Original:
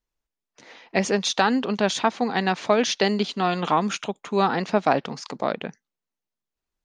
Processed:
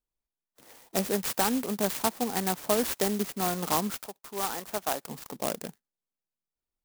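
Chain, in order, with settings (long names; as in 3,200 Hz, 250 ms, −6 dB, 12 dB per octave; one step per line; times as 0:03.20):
0:03.90–0:05.09: high-pass filter 930 Hz 6 dB per octave
converter with an unsteady clock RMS 0.12 ms
level −6 dB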